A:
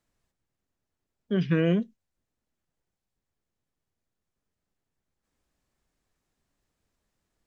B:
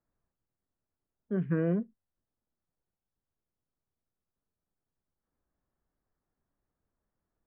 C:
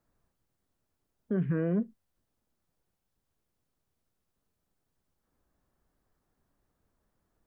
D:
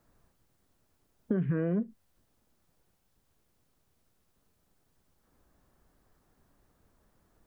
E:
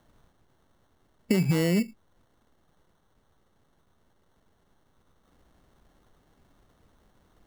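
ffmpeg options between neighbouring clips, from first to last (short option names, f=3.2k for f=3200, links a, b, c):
-af "lowpass=f=1.6k:w=0.5412,lowpass=f=1.6k:w=1.3066,volume=-5dB"
-af "alimiter=level_in=5.5dB:limit=-24dB:level=0:latency=1:release=99,volume=-5.5dB,volume=8dB"
-af "acompressor=threshold=-35dB:ratio=6,volume=8.5dB"
-af "acrusher=samples=18:mix=1:aa=0.000001,volume=5.5dB"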